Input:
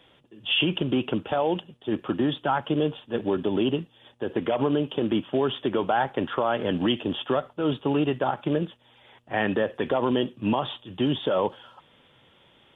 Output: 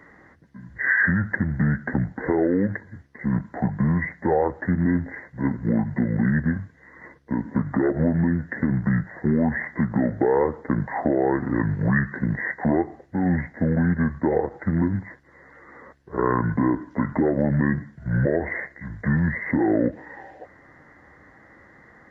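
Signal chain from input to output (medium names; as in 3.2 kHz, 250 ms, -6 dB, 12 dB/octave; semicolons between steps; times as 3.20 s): speed mistake 78 rpm record played at 45 rpm; bass shelf 86 Hz -6 dB; in parallel at +0.5 dB: compression, threshold -34 dBFS, peak gain reduction 14 dB; on the sum: trim +1.5 dB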